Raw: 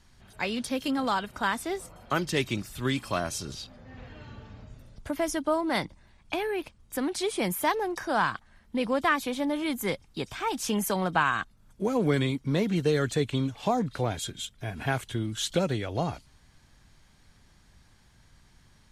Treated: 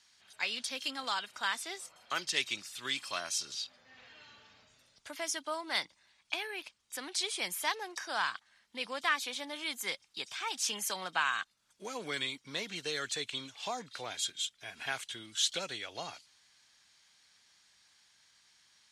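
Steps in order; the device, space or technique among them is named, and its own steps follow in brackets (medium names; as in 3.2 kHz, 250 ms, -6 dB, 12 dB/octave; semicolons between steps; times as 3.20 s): piezo pickup straight into a mixer (low-pass 5.2 kHz 12 dB/octave; differentiator); trim +8.5 dB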